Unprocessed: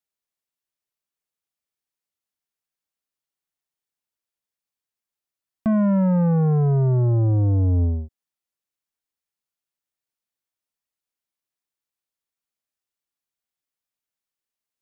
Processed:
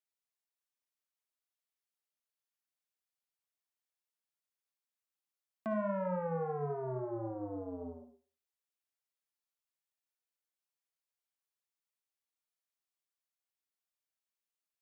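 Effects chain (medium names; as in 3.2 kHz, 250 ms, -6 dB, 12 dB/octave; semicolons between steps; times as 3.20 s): high-pass 450 Hz 12 dB/octave; reverberation RT60 0.40 s, pre-delay 48 ms, DRR 5.5 dB; trim -7 dB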